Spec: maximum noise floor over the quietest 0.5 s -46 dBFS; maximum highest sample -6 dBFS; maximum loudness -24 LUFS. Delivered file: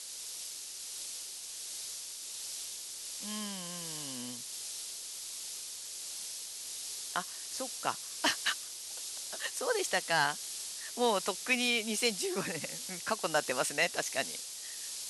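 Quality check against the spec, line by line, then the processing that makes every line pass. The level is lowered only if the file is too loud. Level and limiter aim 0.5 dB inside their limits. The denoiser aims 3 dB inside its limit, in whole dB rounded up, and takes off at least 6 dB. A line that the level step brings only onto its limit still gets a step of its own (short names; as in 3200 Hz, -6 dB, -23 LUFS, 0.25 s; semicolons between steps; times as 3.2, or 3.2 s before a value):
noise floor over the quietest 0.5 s -44 dBFS: fail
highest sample -15.0 dBFS: OK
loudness -34.5 LUFS: OK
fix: denoiser 6 dB, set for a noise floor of -44 dBFS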